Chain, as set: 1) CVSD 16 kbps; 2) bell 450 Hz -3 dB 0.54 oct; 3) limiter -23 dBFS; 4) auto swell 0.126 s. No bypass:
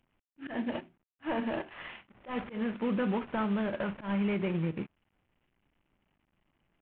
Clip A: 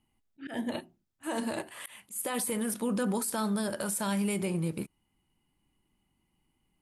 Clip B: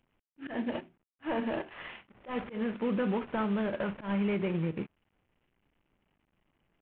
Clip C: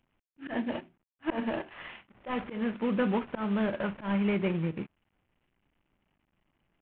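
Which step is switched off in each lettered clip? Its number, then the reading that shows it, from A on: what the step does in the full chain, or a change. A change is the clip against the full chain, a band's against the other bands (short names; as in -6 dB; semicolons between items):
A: 1, momentary loudness spread change -1 LU; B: 2, 500 Hz band +1.5 dB; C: 3, crest factor change +3.5 dB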